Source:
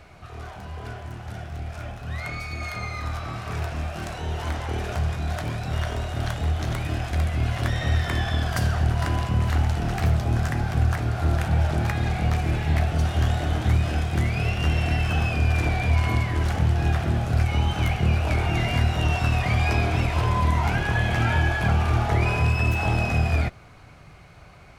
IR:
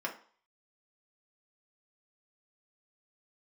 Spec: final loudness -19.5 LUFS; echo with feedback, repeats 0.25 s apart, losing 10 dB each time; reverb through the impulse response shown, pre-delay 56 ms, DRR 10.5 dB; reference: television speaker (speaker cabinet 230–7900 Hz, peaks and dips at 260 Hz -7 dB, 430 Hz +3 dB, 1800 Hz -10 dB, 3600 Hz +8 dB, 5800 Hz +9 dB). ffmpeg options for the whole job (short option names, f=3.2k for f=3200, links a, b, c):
-filter_complex "[0:a]aecho=1:1:250|500|750|1000:0.316|0.101|0.0324|0.0104,asplit=2[a][b];[1:a]atrim=start_sample=2205,adelay=56[c];[b][c]afir=irnorm=-1:irlink=0,volume=-14.5dB[d];[a][d]amix=inputs=2:normalize=0,highpass=f=230:w=0.5412,highpass=f=230:w=1.3066,equalizer=f=260:t=q:w=4:g=-7,equalizer=f=430:t=q:w=4:g=3,equalizer=f=1.8k:t=q:w=4:g=-10,equalizer=f=3.6k:t=q:w=4:g=8,equalizer=f=5.8k:t=q:w=4:g=9,lowpass=f=7.9k:w=0.5412,lowpass=f=7.9k:w=1.3066,volume=10dB"